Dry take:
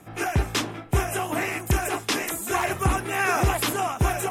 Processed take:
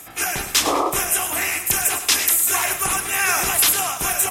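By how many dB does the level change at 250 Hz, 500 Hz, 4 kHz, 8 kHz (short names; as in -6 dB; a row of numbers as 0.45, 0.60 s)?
-3.0, -0.5, +9.0, +14.0 dB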